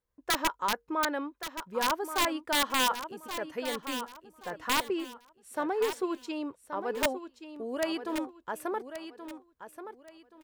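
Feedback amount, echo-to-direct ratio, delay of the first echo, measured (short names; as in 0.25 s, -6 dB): 27%, -10.0 dB, 1.127 s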